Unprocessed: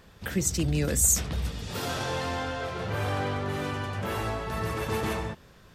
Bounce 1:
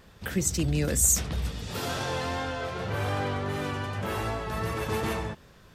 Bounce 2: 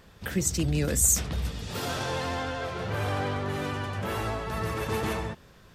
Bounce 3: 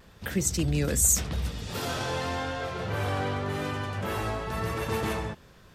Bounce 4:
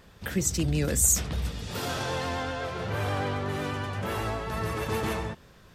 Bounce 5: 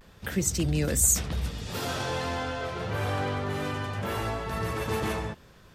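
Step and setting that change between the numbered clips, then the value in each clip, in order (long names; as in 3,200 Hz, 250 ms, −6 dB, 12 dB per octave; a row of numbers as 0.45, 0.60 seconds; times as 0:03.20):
pitch vibrato, speed: 2.6, 13, 0.88, 8.1, 0.31 Hertz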